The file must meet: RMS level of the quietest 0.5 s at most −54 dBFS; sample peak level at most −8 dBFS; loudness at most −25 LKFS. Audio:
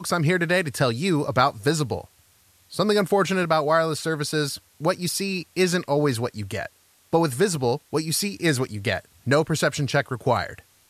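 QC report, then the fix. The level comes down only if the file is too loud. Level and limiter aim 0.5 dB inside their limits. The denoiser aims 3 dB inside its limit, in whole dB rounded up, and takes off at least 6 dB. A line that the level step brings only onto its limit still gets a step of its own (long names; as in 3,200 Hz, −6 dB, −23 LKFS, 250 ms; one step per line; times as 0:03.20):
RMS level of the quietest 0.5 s −59 dBFS: in spec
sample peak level −5.5 dBFS: out of spec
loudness −23.5 LKFS: out of spec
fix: level −2 dB
brickwall limiter −8.5 dBFS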